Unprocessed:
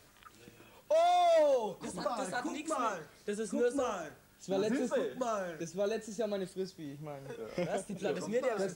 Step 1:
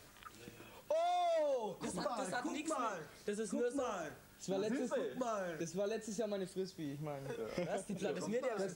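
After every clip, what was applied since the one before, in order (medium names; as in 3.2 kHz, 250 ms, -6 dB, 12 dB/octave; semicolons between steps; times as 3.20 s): compression 2.5:1, threshold -40 dBFS, peak gain reduction 10.5 dB; trim +1.5 dB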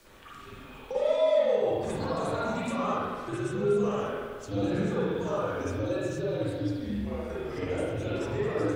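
frequency shift -76 Hz; spring tank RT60 1.6 s, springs 44/54 ms, chirp 25 ms, DRR -9.5 dB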